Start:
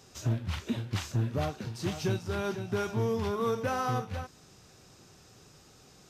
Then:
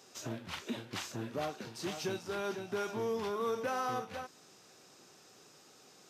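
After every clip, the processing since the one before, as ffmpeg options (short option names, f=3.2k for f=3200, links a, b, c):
-filter_complex "[0:a]highpass=270,asplit=2[a][b];[b]alimiter=level_in=5dB:limit=-24dB:level=0:latency=1:release=23,volume=-5dB,volume=-1.5dB[c];[a][c]amix=inputs=2:normalize=0,volume=-6.5dB"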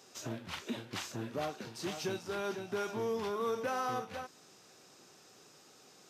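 -af anull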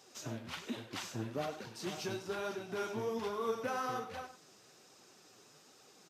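-af "aecho=1:1:98:0.237,flanger=delay=0.9:depth=9:regen=43:speed=1.2:shape=triangular,volume=2dB"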